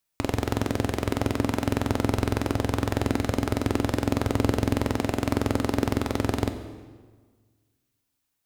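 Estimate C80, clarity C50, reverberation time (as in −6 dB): 11.0 dB, 9.5 dB, 1.5 s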